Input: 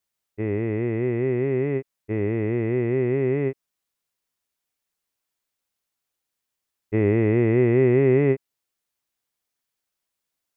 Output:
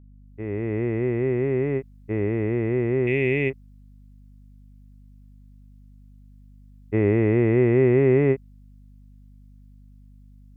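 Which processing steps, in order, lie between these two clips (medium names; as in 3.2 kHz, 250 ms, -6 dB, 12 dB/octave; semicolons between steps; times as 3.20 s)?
fade-in on the opening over 0.79 s; 3.07–3.50 s: resonant high shelf 1.8 kHz +10.5 dB, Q 3; hum 50 Hz, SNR 24 dB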